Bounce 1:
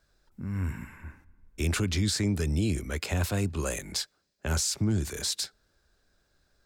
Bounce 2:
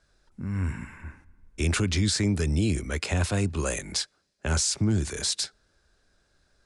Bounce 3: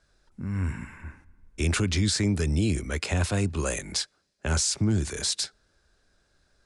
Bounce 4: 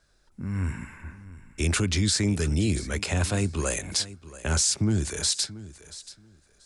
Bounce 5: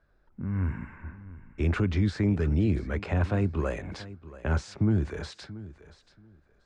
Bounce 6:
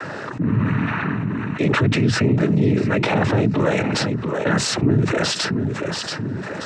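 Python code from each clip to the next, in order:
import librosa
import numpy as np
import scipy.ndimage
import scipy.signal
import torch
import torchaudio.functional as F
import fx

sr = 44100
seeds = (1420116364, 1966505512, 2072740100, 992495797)

y1 = scipy.signal.sosfilt(scipy.signal.cheby1(10, 1.0, 11000.0, 'lowpass', fs=sr, output='sos'), x)
y1 = F.gain(torch.from_numpy(y1), 3.5).numpy()
y2 = y1
y3 = fx.high_shelf(y2, sr, hz=6200.0, db=5.0)
y3 = fx.echo_feedback(y3, sr, ms=682, feedback_pct=18, wet_db=-17)
y4 = scipy.signal.sosfilt(scipy.signal.butter(2, 1600.0, 'lowpass', fs=sr, output='sos'), y3)
y5 = fx.noise_vocoder(y4, sr, seeds[0], bands=12)
y5 = fx.env_flatten(y5, sr, amount_pct=70)
y5 = F.gain(torch.from_numpy(y5), 6.5).numpy()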